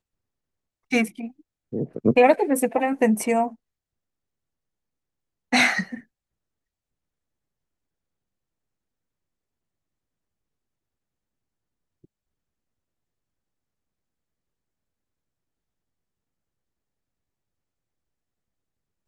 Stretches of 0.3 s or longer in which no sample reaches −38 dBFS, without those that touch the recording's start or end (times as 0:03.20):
0:01.29–0:01.73
0:03.53–0:05.52